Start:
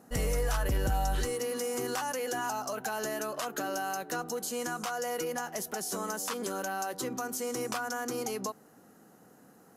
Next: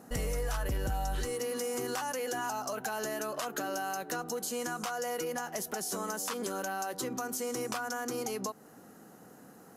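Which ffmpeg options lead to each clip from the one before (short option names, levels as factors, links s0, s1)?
-af "acompressor=threshold=0.01:ratio=2,volume=1.58"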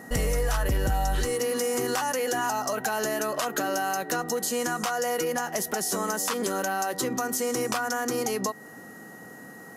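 -af "aeval=exprs='val(0)+0.002*sin(2*PI*1900*n/s)':c=same,volume=2.37"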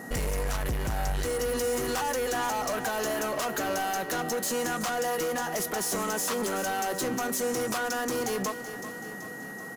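-filter_complex "[0:a]asoftclip=type=tanh:threshold=0.0335,asplit=2[s0][s1];[s1]aecho=0:1:380|760|1140|1520|1900|2280|2660:0.251|0.148|0.0874|0.0516|0.0304|0.018|0.0106[s2];[s0][s2]amix=inputs=2:normalize=0,volume=1.41"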